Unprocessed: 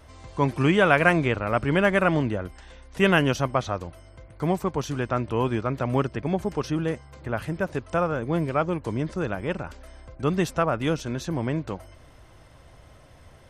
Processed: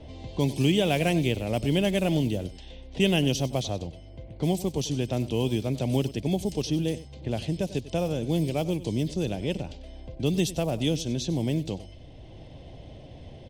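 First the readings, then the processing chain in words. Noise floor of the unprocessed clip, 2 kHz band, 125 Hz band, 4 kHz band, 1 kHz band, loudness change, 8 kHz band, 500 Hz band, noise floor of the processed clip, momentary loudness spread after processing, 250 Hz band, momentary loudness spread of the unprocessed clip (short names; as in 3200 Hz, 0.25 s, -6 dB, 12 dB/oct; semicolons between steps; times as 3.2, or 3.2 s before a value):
-51 dBFS, -10.5 dB, 0.0 dB, +4.0 dB, -10.0 dB, -2.5 dB, +5.0 dB, -3.5 dB, -46 dBFS, 20 LU, -0.5 dB, 12 LU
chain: block floating point 7-bit; EQ curve 270 Hz 0 dB, 780 Hz -6 dB, 1300 Hz -25 dB, 3200 Hz +6 dB; low-pass opened by the level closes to 1600 Hz, open at -23 dBFS; echo 96 ms -17 dB; three-band squash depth 40%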